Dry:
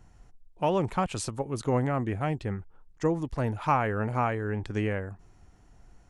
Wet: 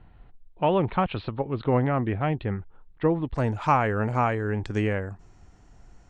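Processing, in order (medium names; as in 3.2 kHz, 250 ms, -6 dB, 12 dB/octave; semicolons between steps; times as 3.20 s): steep low-pass 4 kHz 72 dB/octave, from 3.34 s 8.8 kHz; trim +3.5 dB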